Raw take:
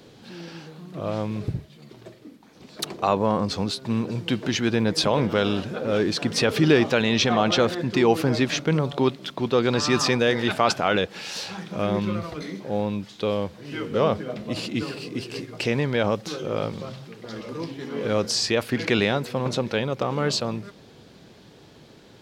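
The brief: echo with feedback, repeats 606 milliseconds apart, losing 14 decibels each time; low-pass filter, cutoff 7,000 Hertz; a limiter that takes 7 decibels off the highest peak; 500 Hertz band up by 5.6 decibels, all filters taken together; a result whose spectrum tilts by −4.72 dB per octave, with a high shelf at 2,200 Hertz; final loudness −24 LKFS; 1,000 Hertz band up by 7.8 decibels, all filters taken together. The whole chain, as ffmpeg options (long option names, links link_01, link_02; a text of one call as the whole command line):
ffmpeg -i in.wav -af "lowpass=7000,equalizer=frequency=500:width_type=o:gain=4.5,equalizer=frequency=1000:width_type=o:gain=8,highshelf=frequency=2200:gain=3.5,alimiter=limit=-7.5dB:level=0:latency=1,aecho=1:1:606|1212:0.2|0.0399,volume=-2.5dB" out.wav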